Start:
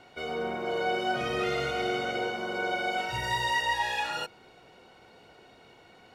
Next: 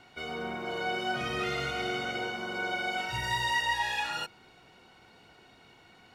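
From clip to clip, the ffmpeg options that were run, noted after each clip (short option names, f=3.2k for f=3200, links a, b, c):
-af "equalizer=f=520:w=1.4:g=-7.5"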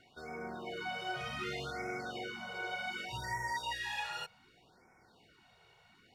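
-af "afftfilt=real='re*(1-between(b*sr/1024,240*pow(3600/240,0.5+0.5*sin(2*PI*0.66*pts/sr))/1.41,240*pow(3600/240,0.5+0.5*sin(2*PI*0.66*pts/sr))*1.41))':imag='im*(1-between(b*sr/1024,240*pow(3600/240,0.5+0.5*sin(2*PI*0.66*pts/sr))/1.41,240*pow(3600/240,0.5+0.5*sin(2*PI*0.66*pts/sr))*1.41))':win_size=1024:overlap=0.75,volume=-6.5dB"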